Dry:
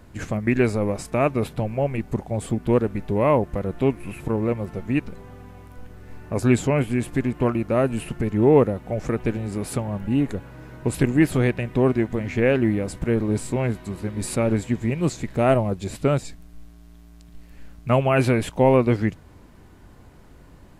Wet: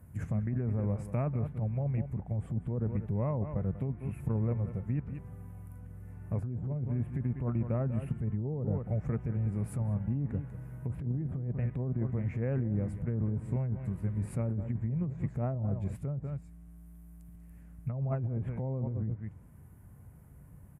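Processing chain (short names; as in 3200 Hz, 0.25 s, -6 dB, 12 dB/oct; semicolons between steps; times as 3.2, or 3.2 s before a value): EQ curve 150 Hz 0 dB, 320 Hz -16 dB, 490 Hz -13 dB, 2100 Hz -15 dB, 4100 Hz -29 dB, 7100 Hz -15 dB, 11000 Hz +2 dB; on a send: echo 0.192 s -13.5 dB; on the sum: treble ducked by the level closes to 690 Hz, closed at -20.5 dBFS; negative-ratio compressor -28 dBFS, ratio -1; HPF 74 Hz; gain -2 dB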